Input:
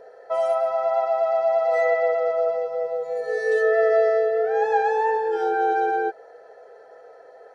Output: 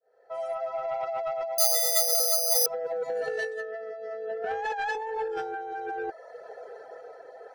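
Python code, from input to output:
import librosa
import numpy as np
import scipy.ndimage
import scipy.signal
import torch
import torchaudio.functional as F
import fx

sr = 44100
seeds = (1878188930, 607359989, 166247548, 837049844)

y = fx.fade_in_head(x, sr, length_s=1.94)
y = fx.highpass(y, sr, hz=fx.line((4.42, 390.0), (4.95, 1000.0)), slope=12, at=(4.42, 4.95), fade=0.02)
y = fx.dereverb_blind(y, sr, rt60_s=0.6)
y = fx.over_compress(y, sr, threshold_db=-30.0, ratio=-1.0)
y = y * (1.0 - 0.3 / 2.0 + 0.3 / 2.0 * np.cos(2.0 * np.pi * 0.61 * (np.arange(len(y)) / sr)))
y = 10.0 ** (-23.0 / 20.0) * np.tanh(y / 10.0 ** (-23.0 / 20.0))
y = fx.resample_bad(y, sr, factor=8, down='filtered', up='zero_stuff', at=(1.58, 2.66))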